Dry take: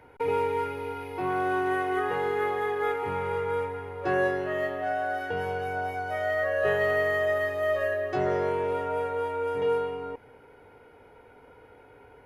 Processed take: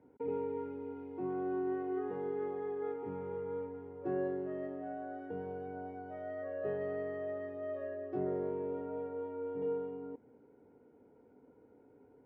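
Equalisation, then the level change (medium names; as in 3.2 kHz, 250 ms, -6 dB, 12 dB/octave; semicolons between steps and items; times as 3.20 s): band-pass filter 250 Hz, Q 2.2; 0.0 dB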